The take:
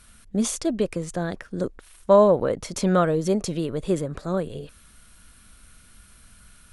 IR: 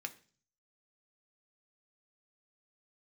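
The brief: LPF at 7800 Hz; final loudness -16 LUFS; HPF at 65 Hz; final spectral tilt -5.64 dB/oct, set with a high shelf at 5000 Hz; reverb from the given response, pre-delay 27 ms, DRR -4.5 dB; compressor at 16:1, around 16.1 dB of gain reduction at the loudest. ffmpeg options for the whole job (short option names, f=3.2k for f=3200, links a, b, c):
-filter_complex "[0:a]highpass=65,lowpass=7.8k,highshelf=f=5k:g=-3.5,acompressor=threshold=-26dB:ratio=16,asplit=2[a][b];[1:a]atrim=start_sample=2205,adelay=27[c];[b][c]afir=irnorm=-1:irlink=0,volume=5.5dB[d];[a][d]amix=inputs=2:normalize=0,volume=12.5dB"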